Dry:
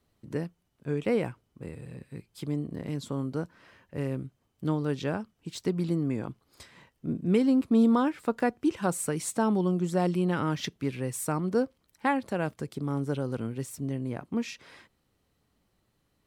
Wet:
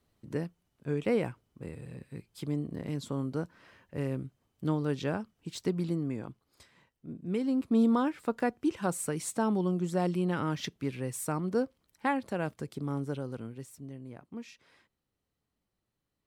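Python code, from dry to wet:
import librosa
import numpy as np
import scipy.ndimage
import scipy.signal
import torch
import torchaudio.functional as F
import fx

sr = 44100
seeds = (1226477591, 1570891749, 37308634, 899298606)

y = fx.gain(x, sr, db=fx.line((5.64, -1.5), (7.07, -11.5), (7.76, -3.0), (12.92, -3.0), (13.92, -12.0)))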